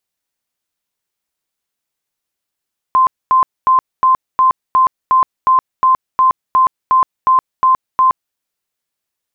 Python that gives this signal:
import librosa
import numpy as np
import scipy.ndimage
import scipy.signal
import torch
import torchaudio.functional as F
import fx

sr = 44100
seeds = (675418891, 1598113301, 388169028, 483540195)

y = fx.tone_burst(sr, hz=1040.0, cycles=124, every_s=0.36, bursts=15, level_db=-7.0)